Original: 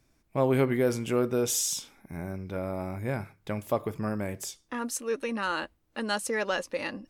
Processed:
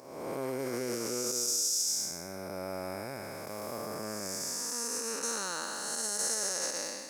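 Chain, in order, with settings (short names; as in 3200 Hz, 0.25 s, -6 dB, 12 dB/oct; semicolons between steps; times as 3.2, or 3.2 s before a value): time blur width 0.508 s; sample leveller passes 1; resonant high shelf 4200 Hz +7.5 dB, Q 3, from 5.23 s +14 dB; limiter -21 dBFS, peak gain reduction 10 dB; HPF 650 Hz 6 dB/oct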